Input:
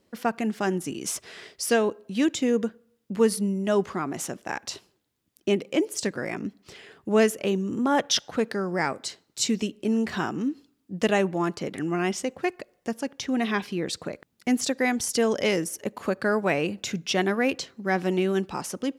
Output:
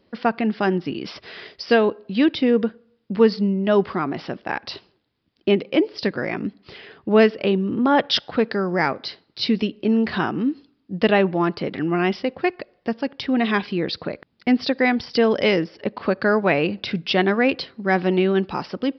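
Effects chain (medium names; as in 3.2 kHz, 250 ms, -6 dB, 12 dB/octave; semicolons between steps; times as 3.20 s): resampled via 11.025 kHz; trim +5.5 dB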